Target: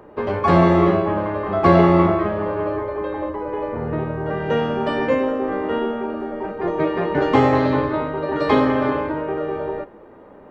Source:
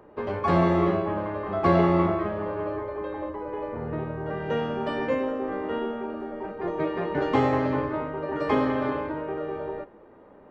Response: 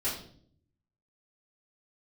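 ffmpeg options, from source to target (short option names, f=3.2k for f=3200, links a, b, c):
-filter_complex "[0:a]asettb=1/sr,asplit=3[a][b][c];[a]atrim=end=7.554[d];[b]atrim=start=7.55:end=8.6,asetpts=PTS-STARTPTS,afade=t=in:d=0.004:c=qsin,afade=t=out:st=1.046:d=0.004:c=qsin,equalizer=f=3.9k:t=o:w=0.26:g=12[e];[c]atrim=start=8.596[f];[d][e]acrossfade=d=0.004:c1=hsin:c2=qsin[g];[g][f]acrossfade=d=0.004:c1=qsin:c2=hsin,volume=7dB"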